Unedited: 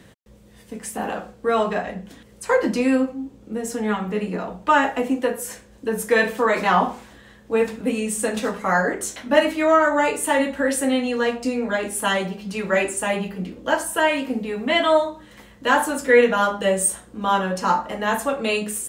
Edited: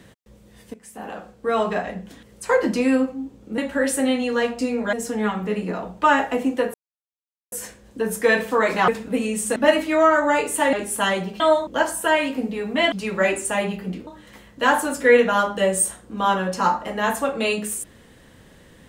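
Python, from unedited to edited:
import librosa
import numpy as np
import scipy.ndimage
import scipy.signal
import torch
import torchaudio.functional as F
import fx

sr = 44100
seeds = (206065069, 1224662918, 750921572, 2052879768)

y = fx.edit(x, sr, fx.fade_in_from(start_s=0.74, length_s=0.98, floor_db=-16.5),
    fx.insert_silence(at_s=5.39, length_s=0.78),
    fx.cut(start_s=6.75, length_s=0.86),
    fx.cut(start_s=8.29, length_s=0.96),
    fx.move(start_s=10.42, length_s=1.35, to_s=3.58),
    fx.swap(start_s=12.44, length_s=1.15, other_s=14.84, other_length_s=0.27), tone=tone)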